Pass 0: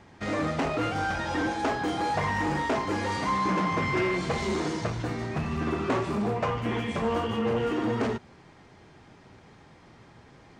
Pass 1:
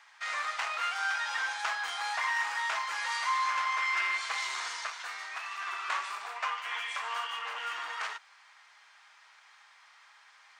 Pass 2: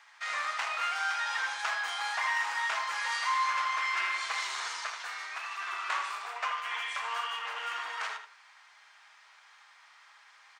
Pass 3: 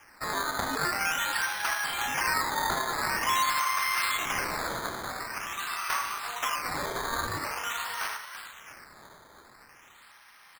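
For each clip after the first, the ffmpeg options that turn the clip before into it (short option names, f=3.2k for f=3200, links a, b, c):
-af "highpass=f=1.1k:w=0.5412,highpass=f=1.1k:w=1.3066,volume=2dB"
-filter_complex "[0:a]asplit=2[a][b];[b]adelay=80,lowpass=f=4k:p=1,volume=-7dB,asplit=2[c][d];[d]adelay=80,lowpass=f=4k:p=1,volume=0.24,asplit=2[e][f];[f]adelay=80,lowpass=f=4k:p=1,volume=0.24[g];[a][c][e][g]amix=inputs=4:normalize=0"
-filter_complex "[0:a]asplit=7[a][b][c][d][e][f][g];[b]adelay=336,afreqshift=97,volume=-11dB[h];[c]adelay=672,afreqshift=194,volume=-16.4dB[i];[d]adelay=1008,afreqshift=291,volume=-21.7dB[j];[e]adelay=1344,afreqshift=388,volume=-27.1dB[k];[f]adelay=1680,afreqshift=485,volume=-32.4dB[l];[g]adelay=2016,afreqshift=582,volume=-37.8dB[m];[a][h][i][j][k][l][m]amix=inputs=7:normalize=0,acrusher=samples=11:mix=1:aa=0.000001:lfo=1:lforange=11:lforate=0.46,volume=2.5dB"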